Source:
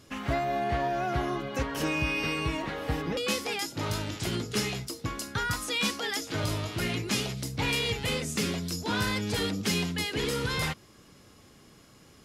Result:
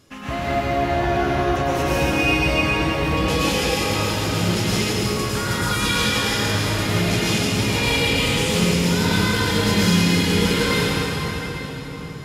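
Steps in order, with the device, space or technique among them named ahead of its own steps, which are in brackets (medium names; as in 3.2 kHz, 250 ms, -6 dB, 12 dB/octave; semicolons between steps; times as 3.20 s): cathedral (reverberation RT60 4.9 s, pre-delay 100 ms, DRR -10 dB)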